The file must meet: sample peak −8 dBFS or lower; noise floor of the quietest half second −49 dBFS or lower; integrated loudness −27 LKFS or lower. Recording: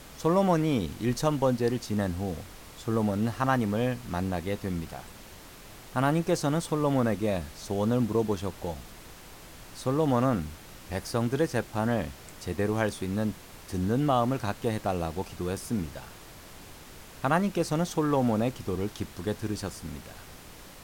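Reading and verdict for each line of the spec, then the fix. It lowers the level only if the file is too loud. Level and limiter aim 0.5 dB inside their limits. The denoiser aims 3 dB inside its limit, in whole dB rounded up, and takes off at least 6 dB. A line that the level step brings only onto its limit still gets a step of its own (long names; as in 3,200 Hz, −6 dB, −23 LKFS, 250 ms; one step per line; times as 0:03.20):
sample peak −11.5 dBFS: in spec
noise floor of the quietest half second −47 dBFS: out of spec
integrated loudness −29.0 LKFS: in spec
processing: broadband denoise 6 dB, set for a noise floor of −47 dBFS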